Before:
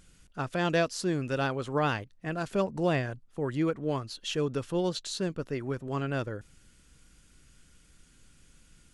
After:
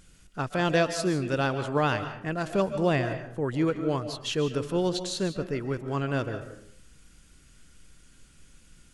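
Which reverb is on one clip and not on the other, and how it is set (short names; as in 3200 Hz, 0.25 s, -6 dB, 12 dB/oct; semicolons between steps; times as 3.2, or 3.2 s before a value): digital reverb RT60 0.63 s, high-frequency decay 0.55×, pre-delay 0.105 s, DRR 9 dB; gain +2.5 dB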